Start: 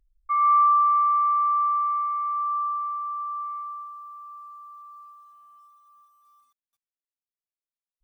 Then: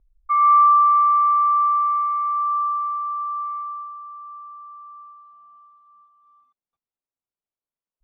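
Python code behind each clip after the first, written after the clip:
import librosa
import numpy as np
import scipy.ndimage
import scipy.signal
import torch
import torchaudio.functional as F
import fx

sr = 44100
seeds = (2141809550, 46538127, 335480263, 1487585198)

y = fx.env_lowpass(x, sr, base_hz=1400.0, full_db=-22.5)
y = fx.peak_eq(y, sr, hz=1700.0, db=-7.0, octaves=0.41)
y = y * 10.0 ** (5.5 / 20.0)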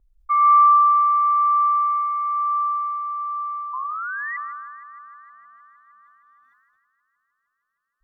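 y = fx.spec_paint(x, sr, seeds[0], shape='rise', start_s=3.73, length_s=0.64, low_hz=1000.0, high_hz=2000.0, level_db=-29.0)
y = fx.echo_heads(y, sr, ms=155, heads='first and third', feedback_pct=68, wet_db=-22.0)
y = fx.sustainer(y, sr, db_per_s=28.0)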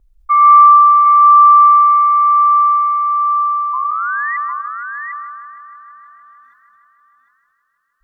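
y = x + 10.0 ** (-6.0 / 20.0) * np.pad(x, (int(752 * sr / 1000.0), 0))[:len(x)]
y = y * 10.0 ** (7.5 / 20.0)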